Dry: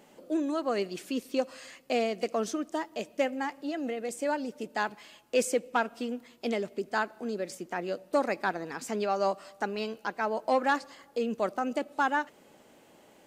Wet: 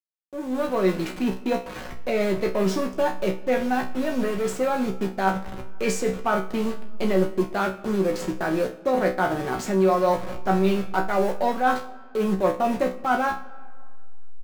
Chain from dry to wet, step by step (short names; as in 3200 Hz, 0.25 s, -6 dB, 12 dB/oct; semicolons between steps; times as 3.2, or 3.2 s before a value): level-crossing sampler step -39.5 dBFS; in parallel at -8.5 dB: wavefolder -32 dBFS; on the sum: high shelf 3300 Hz -9 dB; resonator 69 Hz, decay 0.28 s, harmonics all, mix 90%; reverse; compressor, threshold -35 dBFS, peak gain reduction 9 dB; reverse; speed mistake 48 kHz file played as 44.1 kHz; reverb RT60 1.9 s, pre-delay 50 ms, DRR 18.5 dB; AGC gain up to 14.5 dB; comb 5.4 ms, depth 43%; gain +2 dB